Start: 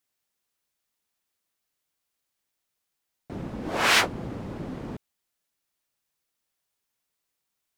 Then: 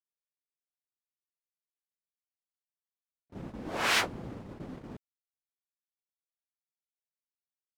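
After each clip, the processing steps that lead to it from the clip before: gate -35 dBFS, range -26 dB; trim -6.5 dB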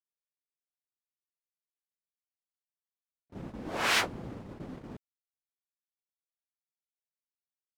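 no audible change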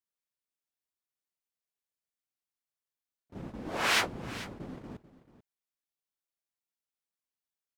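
delay 439 ms -16 dB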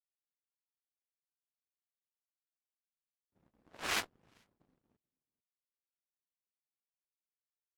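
Chebyshev shaper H 3 -13 dB, 4 -31 dB, 6 -42 dB, 7 -27 dB, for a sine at -14 dBFS; trim -3.5 dB; AAC 64 kbps 44.1 kHz

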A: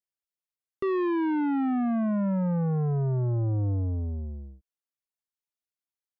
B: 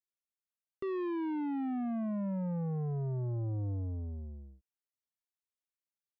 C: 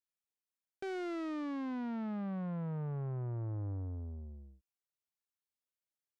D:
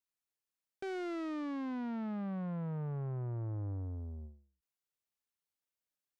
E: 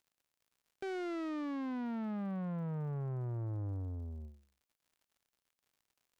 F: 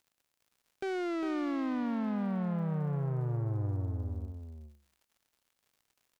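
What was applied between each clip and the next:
dynamic bell 1.4 kHz, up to -8 dB, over -54 dBFS, Q 3; trim -8.5 dB
self-modulated delay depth 0.28 ms; trim -3.5 dB
endings held to a fixed fall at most 130 dB/s
crackle 94 per s -61 dBFS
delay 403 ms -7.5 dB; trim +5 dB

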